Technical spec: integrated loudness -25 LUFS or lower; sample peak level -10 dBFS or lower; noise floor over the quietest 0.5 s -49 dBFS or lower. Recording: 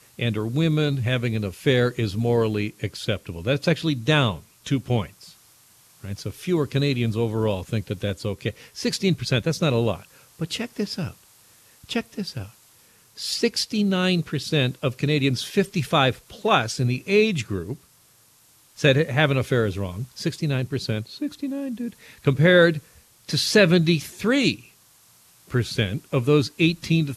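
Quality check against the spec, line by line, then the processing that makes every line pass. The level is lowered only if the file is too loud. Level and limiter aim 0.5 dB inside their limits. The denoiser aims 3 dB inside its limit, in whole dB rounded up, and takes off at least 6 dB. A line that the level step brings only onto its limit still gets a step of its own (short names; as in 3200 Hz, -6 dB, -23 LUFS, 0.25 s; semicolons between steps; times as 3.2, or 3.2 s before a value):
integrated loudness -23.0 LUFS: fail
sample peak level -5.5 dBFS: fail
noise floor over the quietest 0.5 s -57 dBFS: OK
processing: gain -2.5 dB; limiter -10.5 dBFS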